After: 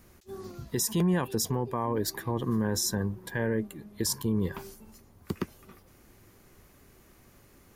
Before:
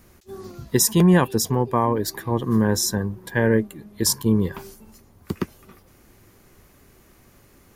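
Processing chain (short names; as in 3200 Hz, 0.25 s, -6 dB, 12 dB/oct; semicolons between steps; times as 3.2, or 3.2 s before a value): limiter -14.5 dBFS, peak gain reduction 9 dB; gain -4 dB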